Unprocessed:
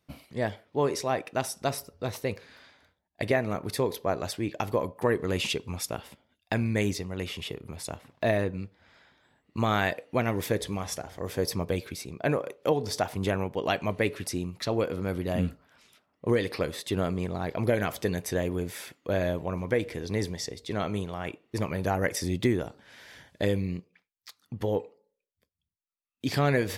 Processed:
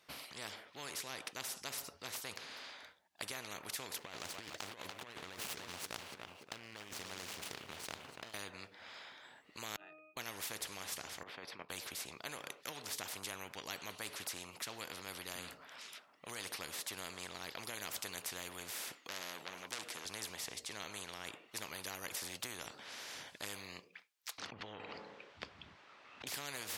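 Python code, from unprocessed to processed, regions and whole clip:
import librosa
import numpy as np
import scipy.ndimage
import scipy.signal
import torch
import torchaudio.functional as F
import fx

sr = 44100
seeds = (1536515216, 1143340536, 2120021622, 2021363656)

y = fx.chain(x, sr, fx.median_filter(points=25),
    fx.echo_feedback(ms=289, feedback_pct=39, wet_db=-16.5),
    fx.over_compress(threshold_db=-33.0, ratio=-0.5), at=(3.98, 8.34))
y = fx.chain(y, sr, fx.highpass(hz=420.0, slope=12),
    fx.octave_resonator(note='D#', decay_s=0.67), at=(9.76, 10.17))
y = fx.chain(y, sr, fx.highpass(hz=280.0, slope=12),
    fx.level_steps(step_db=11),
    fx.air_absorb(metres=420.0), at=(11.23, 11.7))
y = fx.chain(y, sr, fx.highpass(hz=270.0, slope=12),
    fx.transformer_sat(knee_hz=3500.0), at=(18.98, 20.05))
y = fx.chain(y, sr, fx.spacing_loss(db_at_10k=42),
    fx.env_flatten(amount_pct=100), at=(24.38, 26.27))
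y = fx.highpass(y, sr, hz=1100.0, slope=6)
y = fx.high_shelf(y, sr, hz=8600.0, db=-8.5)
y = fx.spectral_comp(y, sr, ratio=4.0)
y = y * 10.0 ** (-3.5 / 20.0)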